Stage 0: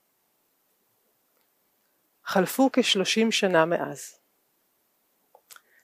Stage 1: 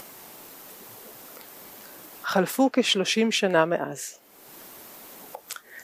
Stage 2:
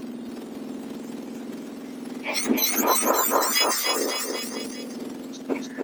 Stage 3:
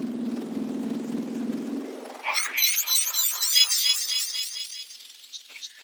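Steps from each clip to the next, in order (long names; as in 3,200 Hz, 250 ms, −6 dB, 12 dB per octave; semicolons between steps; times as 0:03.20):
upward compression, threshold −24 dBFS
frequency axis turned over on the octave scale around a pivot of 1,800 Hz; bouncing-ball delay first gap 290 ms, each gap 0.9×, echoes 5; transient designer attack +5 dB, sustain +9 dB
phase shifter 1.7 Hz, delay 4.8 ms, feedback 25%; high-pass filter sweep 180 Hz → 3,500 Hz, 0:01.59–0:02.80; highs frequency-modulated by the lows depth 0.18 ms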